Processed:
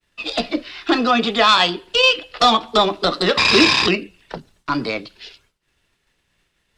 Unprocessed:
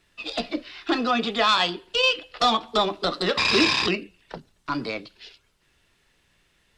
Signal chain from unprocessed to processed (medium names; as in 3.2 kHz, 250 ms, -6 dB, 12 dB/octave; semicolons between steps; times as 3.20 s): expander -57 dBFS; trim +6.5 dB